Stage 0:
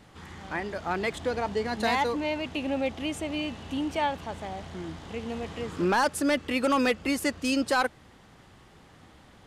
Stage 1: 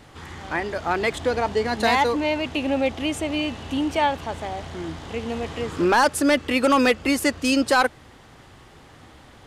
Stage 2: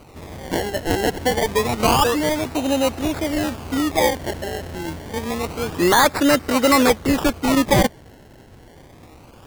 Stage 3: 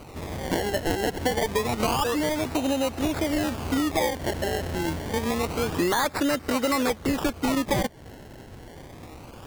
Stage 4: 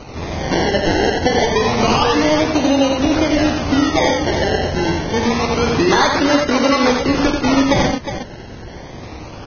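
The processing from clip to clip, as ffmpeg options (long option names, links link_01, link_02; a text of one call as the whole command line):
ffmpeg -i in.wav -af "equalizer=frequency=190:width=5.7:gain=-8.5,volume=6.5dB" out.wav
ffmpeg -i in.wav -af "acrusher=samples=25:mix=1:aa=0.000001:lfo=1:lforange=25:lforate=0.27,volume=3dB" out.wav
ffmpeg -i in.wav -af "acompressor=threshold=-24dB:ratio=6,volume=2dB" out.wav
ffmpeg -i in.wav -filter_complex "[0:a]asplit=2[link_01][link_02];[link_02]aecho=0:1:48|89|118|361:0.355|0.631|0.266|0.355[link_03];[link_01][link_03]amix=inputs=2:normalize=0,volume=8dB" -ar 16000 -c:a libvorbis -b:a 16k out.ogg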